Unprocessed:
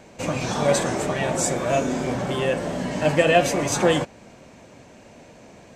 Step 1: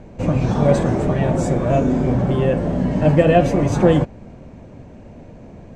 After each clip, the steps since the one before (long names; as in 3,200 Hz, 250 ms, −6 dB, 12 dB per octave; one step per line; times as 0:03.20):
spectral tilt −4 dB per octave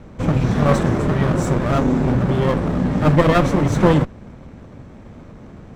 lower of the sound and its delayed copy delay 0.53 ms
level +1 dB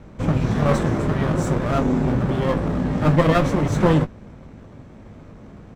double-tracking delay 19 ms −10 dB
level −3 dB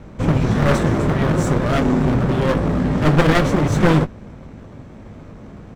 wavefolder on the positive side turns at −16 dBFS
level +4 dB